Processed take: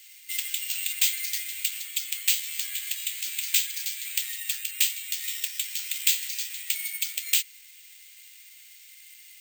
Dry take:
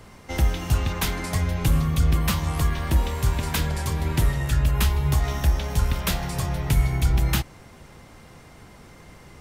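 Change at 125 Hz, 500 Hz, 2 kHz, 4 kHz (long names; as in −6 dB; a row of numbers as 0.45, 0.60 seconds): below −40 dB, below −40 dB, −1.5 dB, +4.0 dB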